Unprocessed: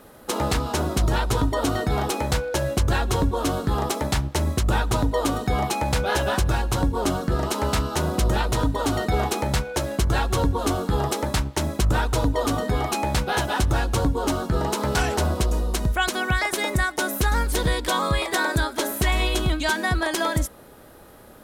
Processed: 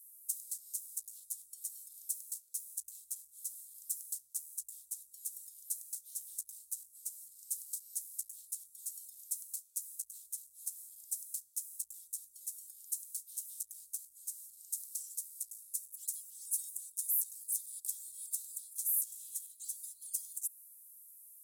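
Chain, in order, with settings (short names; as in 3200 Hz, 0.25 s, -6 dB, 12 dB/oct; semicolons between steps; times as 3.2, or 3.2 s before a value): one-sided clip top -21 dBFS; compressor, threshold -23 dBFS, peak gain reduction 5 dB; inverse Chebyshev high-pass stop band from 2100 Hz, stop band 70 dB; gain +2.5 dB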